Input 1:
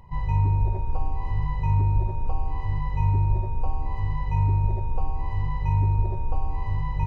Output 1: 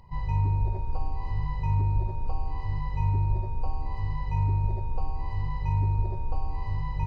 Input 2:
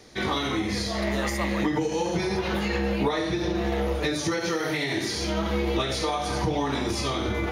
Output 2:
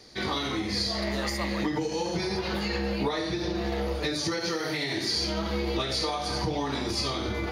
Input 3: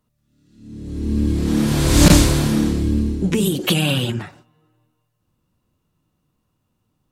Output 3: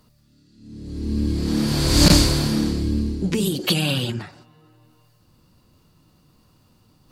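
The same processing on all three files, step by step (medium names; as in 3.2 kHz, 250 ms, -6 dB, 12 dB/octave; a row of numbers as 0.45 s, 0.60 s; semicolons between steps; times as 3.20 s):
peaking EQ 4.6 kHz +12 dB 0.28 oct; reverse; upward compressor, threshold -39 dBFS; reverse; trim -3.5 dB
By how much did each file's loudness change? -3.5 LU, -2.5 LU, -2.5 LU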